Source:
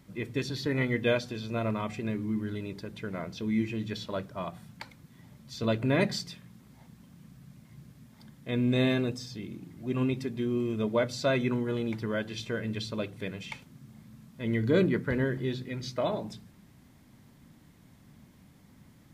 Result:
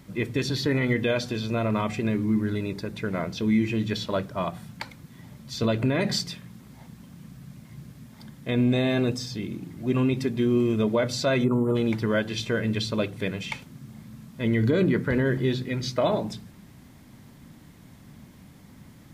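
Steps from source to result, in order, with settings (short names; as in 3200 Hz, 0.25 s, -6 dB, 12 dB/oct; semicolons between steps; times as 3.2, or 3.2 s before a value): 2.24–3.06 notch 3100 Hz, Q 11; 8.54–9.03 bell 720 Hz +7.5 dB 0.34 oct; 11.44–11.76 spectral gain 1400–6900 Hz -20 dB; limiter -21.5 dBFS, peak gain reduction 9.5 dB; gain +7.5 dB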